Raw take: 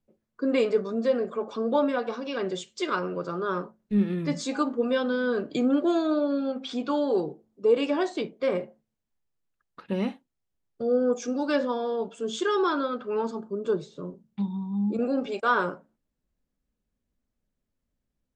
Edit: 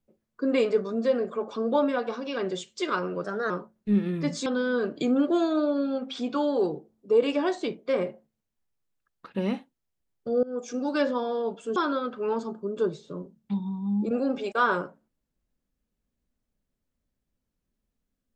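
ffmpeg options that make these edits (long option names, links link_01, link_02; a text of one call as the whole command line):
ffmpeg -i in.wav -filter_complex "[0:a]asplit=6[link_01][link_02][link_03][link_04][link_05][link_06];[link_01]atrim=end=3.244[link_07];[link_02]atrim=start=3.24:end=3.54,asetpts=PTS-STARTPTS,asetrate=50715,aresample=44100,atrim=end_sample=11504,asetpts=PTS-STARTPTS[link_08];[link_03]atrim=start=3.536:end=4.502[link_09];[link_04]atrim=start=4.998:end=10.97,asetpts=PTS-STARTPTS,afade=type=out:start_time=5.968:duration=0.004:curve=hsin:silence=0.0841395[link_10];[link_05]atrim=start=10.97:end=12.302,asetpts=PTS-STARTPTS,afade=type=in:duration=0.56:curve=qsin:silence=0.0841395[link_11];[link_06]atrim=start=12.638[link_12];[link_07][link_08]acrossfade=duration=0.004:curve1=hsin:curve2=hsin[link_13];[link_13][link_09]acrossfade=duration=0.004:curve1=hsin:curve2=hsin[link_14];[link_10][link_11]concat=n=2:v=0:a=1[link_15];[link_14][link_15]acrossfade=duration=0.004:curve1=hsin:curve2=hsin[link_16];[link_16][link_12]acrossfade=duration=0.004:curve1=hsin:curve2=hsin" out.wav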